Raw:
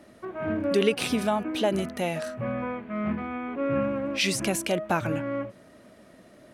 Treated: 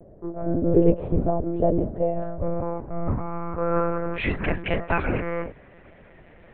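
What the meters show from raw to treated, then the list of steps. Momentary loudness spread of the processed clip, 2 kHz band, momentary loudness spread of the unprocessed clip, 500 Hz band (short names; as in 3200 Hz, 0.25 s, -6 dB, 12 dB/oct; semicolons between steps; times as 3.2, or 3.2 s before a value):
10 LU, +0.5 dB, 8 LU, +2.5 dB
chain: octaver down 2 oct, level +3 dB; low-pass sweep 520 Hz -> 2300 Hz, 1.93–4.94; monotone LPC vocoder at 8 kHz 170 Hz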